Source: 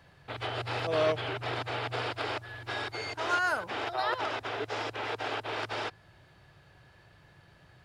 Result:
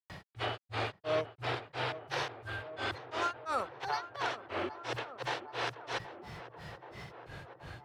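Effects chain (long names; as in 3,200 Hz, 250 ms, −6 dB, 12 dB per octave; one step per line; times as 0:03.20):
granular cloud 237 ms, grains 2.9 per second, pitch spread up and down by 3 semitones
tape delay 777 ms, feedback 66%, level −24 dB, low-pass 1,400 Hz
envelope flattener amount 50%
level −4 dB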